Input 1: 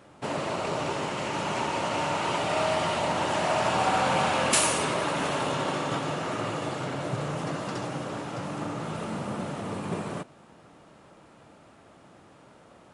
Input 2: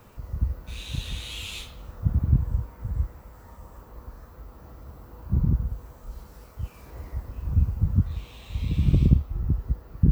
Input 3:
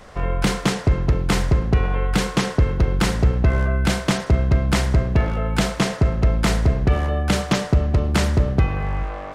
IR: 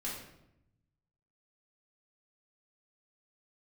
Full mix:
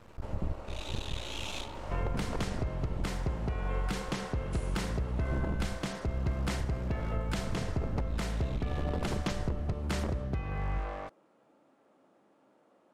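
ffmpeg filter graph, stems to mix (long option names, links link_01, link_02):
-filter_complex "[0:a]highpass=310,tiltshelf=frequency=970:gain=6,acompressor=threshold=-29dB:ratio=6,volume=-16dB,asplit=2[link_01][link_02];[link_02]volume=-5dB[link_03];[1:a]aeval=exprs='max(val(0),0)':channel_layout=same,adynamicsmooth=sensitivity=4.5:basefreq=7900,aeval=exprs='0.0708*(abs(mod(val(0)/0.0708+3,4)-2)-1)':channel_layout=same,volume=2dB[link_04];[2:a]acompressor=threshold=-19dB:ratio=2.5,adelay=1750,volume=-7.5dB[link_05];[3:a]atrim=start_sample=2205[link_06];[link_03][link_06]afir=irnorm=-1:irlink=0[link_07];[link_01][link_04][link_05][link_07]amix=inputs=4:normalize=0,alimiter=limit=-22.5dB:level=0:latency=1:release=444"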